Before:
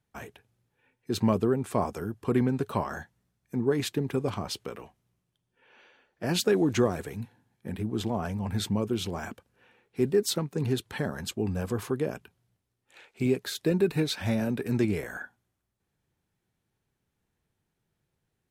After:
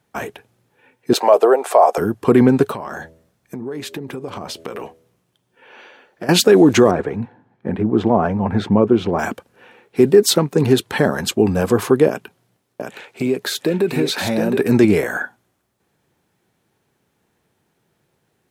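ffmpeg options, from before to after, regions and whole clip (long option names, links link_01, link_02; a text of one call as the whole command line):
ffmpeg -i in.wav -filter_complex "[0:a]asettb=1/sr,asplit=3[link_01][link_02][link_03];[link_01]atrim=end=1.134[link_04];[link_02]atrim=start=1.13:end=1.98,asetpts=PTS-STARTPTS,afade=type=in:duration=0.004:curve=qsin,afade=type=out:start_time=0.846:duration=0.004:curve=qsin,highpass=frequency=460:width=0.5412,highpass=frequency=460:width=1.3066,equalizer=frequency=690:width=1.7:gain=11[link_05];[link_03]atrim=start=1.976[link_06];[link_04][link_05]acrossfade=duration=0.004:curve1=hsin:curve2=qsin[link_07];[link_07][link_06]acrossfade=duration=0.004:curve1=qsin:curve2=hsin,asettb=1/sr,asplit=3[link_08][link_09][link_10];[link_08]atrim=end=2.714[link_11];[link_09]atrim=start=2.71:end=6.29,asetpts=PTS-STARTPTS,afade=type=in:duration=0.004:curve=qsin,afade=type=out:start_time=3.576:duration=0.004:curve=qsin,bandreject=frequency=81.41:width_type=h:width=4,bandreject=frequency=162.82:width_type=h:width=4,bandreject=frequency=244.23:width_type=h:width=4,bandreject=frequency=325.64:width_type=h:width=4,bandreject=frequency=407.05:width_type=h:width=4,bandreject=frequency=488.46:width_type=h:width=4,bandreject=frequency=569.87:width_type=h:width=4,bandreject=frequency=651.28:width_type=h:width=4,acompressor=threshold=-39dB:ratio=12:attack=3.2:release=140:knee=1:detection=peak[link_12];[link_10]atrim=start=6.286[link_13];[link_11][link_12]acrossfade=duration=0.004:curve1=hsin:curve2=qsin[link_14];[link_14][link_13]acrossfade=duration=0.004:curve1=qsin:curve2=hsin,asettb=1/sr,asplit=3[link_15][link_16][link_17];[link_15]atrim=end=6.914[link_18];[link_16]atrim=start=6.91:end=9.19,asetpts=PTS-STARTPTS,afade=type=in:duration=0.004:curve=qsin,afade=type=out:start_time=2.276:duration=0.004:curve=qsin,lowpass=1500,aemphasis=mode=production:type=50kf[link_19];[link_17]atrim=start=9.186[link_20];[link_18][link_19]acrossfade=duration=0.004:curve1=hsin:curve2=qsin[link_21];[link_21][link_20]acrossfade=duration=0.004:curve1=qsin:curve2=hsin,asettb=1/sr,asplit=3[link_22][link_23][link_24];[link_22]atrim=end=12.084[link_25];[link_23]atrim=start=12.08:end=14.57,asetpts=PTS-STARTPTS,afade=type=in:duration=0.004:curve=qsin,afade=type=out:start_time=2.486:duration=0.004:curve=qsin,highpass=110,acompressor=threshold=-33dB:ratio=2.5:attack=3.2:release=140:knee=1:detection=peak,aecho=1:1:717:0.596,atrim=end_sample=109809[link_26];[link_24]atrim=start=14.566[link_27];[link_25][link_26]acrossfade=duration=0.004:curve1=hsin:curve2=qsin[link_28];[link_28][link_27]acrossfade=duration=0.004:curve1=qsin:curve2=hsin,highpass=frequency=440:poles=1,tiltshelf=frequency=970:gain=4,alimiter=level_in=18dB:limit=-1dB:release=50:level=0:latency=1,volume=-1dB" out.wav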